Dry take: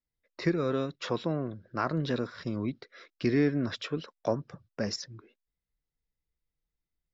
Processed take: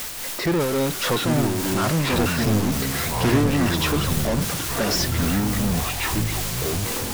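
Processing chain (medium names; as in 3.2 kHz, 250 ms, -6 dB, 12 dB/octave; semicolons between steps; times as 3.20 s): in parallel at -12 dB: word length cut 6-bit, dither triangular; on the sum: tremolo 3.6 Hz, depth 75%; power-law waveshaper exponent 0.35; ever faster or slower copies 606 ms, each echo -6 st, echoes 3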